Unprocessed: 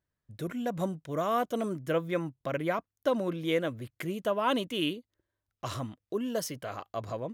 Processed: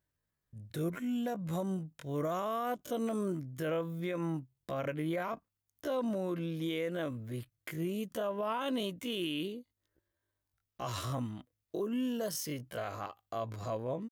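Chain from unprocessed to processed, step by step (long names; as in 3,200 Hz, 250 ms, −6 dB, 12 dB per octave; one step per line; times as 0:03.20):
high-shelf EQ 11,000 Hz +6.5 dB
brickwall limiter −26.5 dBFS, peak gain reduction 10.5 dB
tempo change 0.52×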